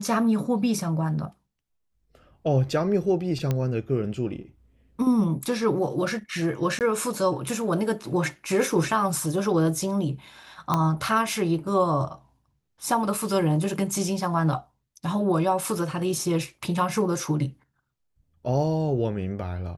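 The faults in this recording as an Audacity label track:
3.510000	3.510000	pop -13 dBFS
6.790000	6.810000	gap 18 ms
10.740000	10.740000	pop -10 dBFS

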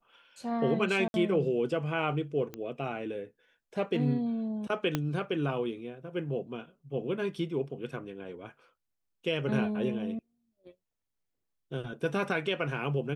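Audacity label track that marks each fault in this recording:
1.080000	1.140000	gap 61 ms
2.540000	2.540000	pop -24 dBFS
4.950000	4.950000	pop -14 dBFS

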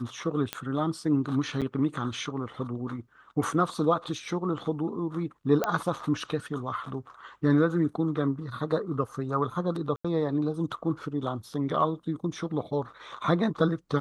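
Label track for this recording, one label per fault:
0.530000	0.530000	pop -13 dBFS
1.610000	1.620000	gap 7.3 ms
5.640000	5.640000	pop -12 dBFS
9.960000	10.040000	gap 85 ms

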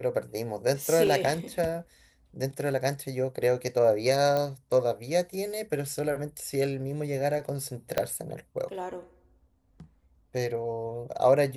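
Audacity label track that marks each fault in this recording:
1.070000	1.070000	gap 2.5 ms
4.370000	4.370000	pop -16 dBFS
7.980000	7.980000	pop -10 dBFS

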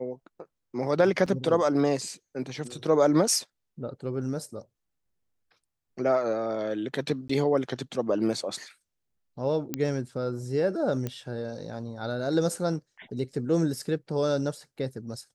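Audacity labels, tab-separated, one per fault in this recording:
1.260000	1.260000	gap 4.4 ms
7.280000	7.290000	gap 14 ms
9.740000	9.740000	pop -13 dBFS
11.070000	11.070000	pop -18 dBFS

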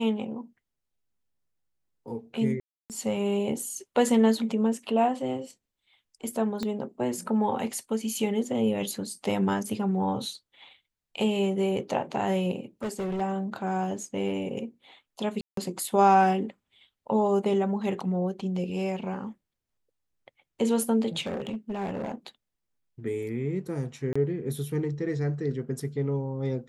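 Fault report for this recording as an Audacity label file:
2.600000	2.900000	gap 0.298 s
6.630000	6.630000	pop -18 dBFS
12.830000	13.220000	clipped -27.5 dBFS
15.410000	15.570000	gap 0.163 s
21.200000	22.150000	clipped -28 dBFS
24.130000	24.160000	gap 25 ms

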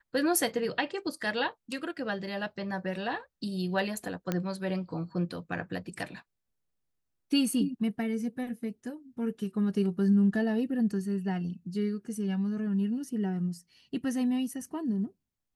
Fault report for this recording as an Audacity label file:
4.320000	4.320000	pop -16 dBFS

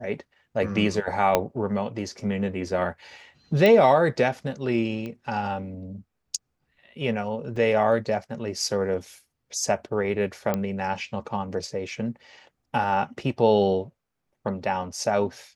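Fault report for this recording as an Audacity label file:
1.350000	1.350000	pop -5 dBFS
3.660000	3.660000	pop -10 dBFS
5.060000	5.060000	pop -23 dBFS
7.560000	7.560000	gap 3.7 ms
10.540000	10.540000	pop -12 dBFS

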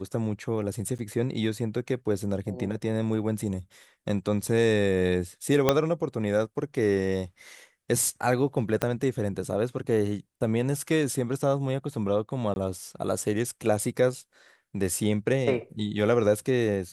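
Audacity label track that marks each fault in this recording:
0.980000	0.990000	gap 9.2 ms
5.690000	5.690000	pop -5 dBFS
8.820000	8.820000	pop -10 dBFS
12.540000	12.560000	gap 21 ms

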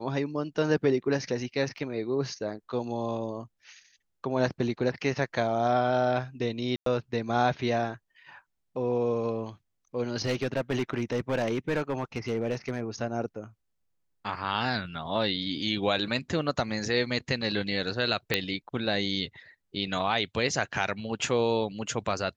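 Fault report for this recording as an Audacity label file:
1.780000	1.780000	gap 2.1 ms
6.760000	6.860000	gap 0.103 s
10.220000	12.810000	clipped -22.5 dBFS
18.340000	18.340000	pop -8 dBFS

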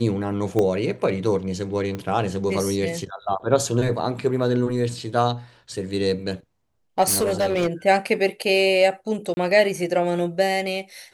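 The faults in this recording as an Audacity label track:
0.590000	0.590000	pop -11 dBFS
1.950000	1.950000	pop -17 dBFS
7.020000	7.680000	clipped -17 dBFS
9.340000	9.370000	gap 30 ms

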